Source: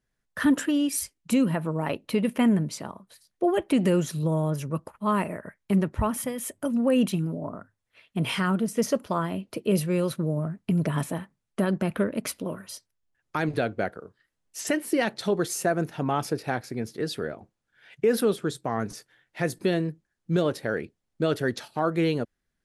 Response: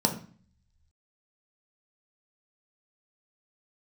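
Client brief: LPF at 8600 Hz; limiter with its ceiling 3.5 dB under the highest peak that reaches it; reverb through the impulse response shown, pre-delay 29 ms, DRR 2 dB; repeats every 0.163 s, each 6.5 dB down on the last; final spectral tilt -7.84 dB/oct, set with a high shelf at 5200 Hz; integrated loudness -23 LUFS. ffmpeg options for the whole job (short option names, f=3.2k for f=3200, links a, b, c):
-filter_complex "[0:a]lowpass=8.6k,highshelf=f=5.2k:g=-6.5,alimiter=limit=-17dB:level=0:latency=1,aecho=1:1:163|326|489|652|815|978:0.473|0.222|0.105|0.0491|0.0231|0.0109,asplit=2[a][b];[1:a]atrim=start_sample=2205,adelay=29[c];[b][c]afir=irnorm=-1:irlink=0,volume=-12.5dB[d];[a][d]amix=inputs=2:normalize=0,volume=-2dB"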